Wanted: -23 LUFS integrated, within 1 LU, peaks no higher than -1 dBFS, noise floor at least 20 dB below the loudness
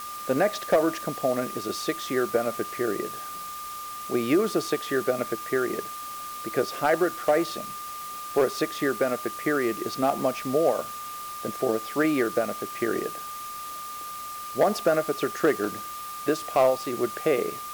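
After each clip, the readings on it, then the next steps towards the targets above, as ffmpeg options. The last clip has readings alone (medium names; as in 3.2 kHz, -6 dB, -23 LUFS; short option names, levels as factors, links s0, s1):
steady tone 1.2 kHz; tone level -35 dBFS; noise floor -37 dBFS; noise floor target -47 dBFS; loudness -27.0 LUFS; peak level -12.0 dBFS; loudness target -23.0 LUFS
-> -af "bandreject=f=1200:w=30"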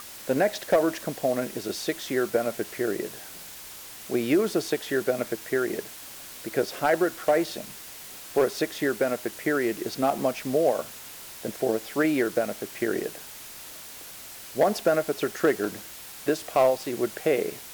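steady tone not found; noise floor -43 dBFS; noise floor target -47 dBFS
-> -af "afftdn=nr=6:nf=-43"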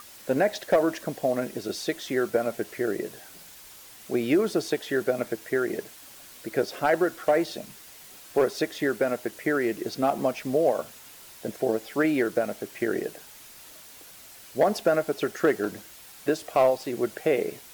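noise floor -48 dBFS; loudness -27.0 LUFS; peak level -12.0 dBFS; loudness target -23.0 LUFS
-> -af "volume=1.58"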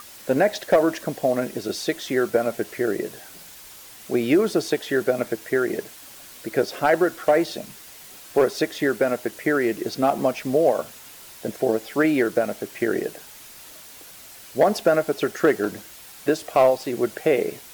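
loudness -23.0 LUFS; peak level -8.0 dBFS; noise floor -44 dBFS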